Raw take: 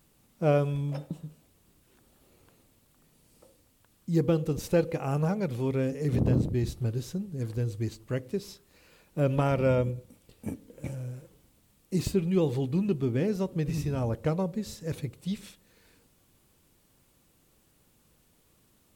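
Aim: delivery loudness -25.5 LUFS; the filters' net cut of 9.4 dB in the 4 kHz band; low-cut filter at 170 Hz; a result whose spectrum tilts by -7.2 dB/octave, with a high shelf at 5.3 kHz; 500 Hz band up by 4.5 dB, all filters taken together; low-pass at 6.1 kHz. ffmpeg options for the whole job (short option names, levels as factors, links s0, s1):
-af "highpass=170,lowpass=6100,equalizer=f=500:t=o:g=5.5,equalizer=f=4000:t=o:g=-8.5,highshelf=f=5300:g=-7,volume=1.41"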